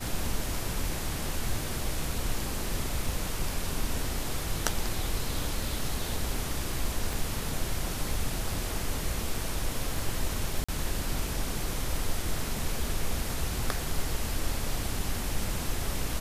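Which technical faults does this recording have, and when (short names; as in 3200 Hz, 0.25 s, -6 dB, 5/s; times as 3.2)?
7.13 pop
10.64–10.69 gap 45 ms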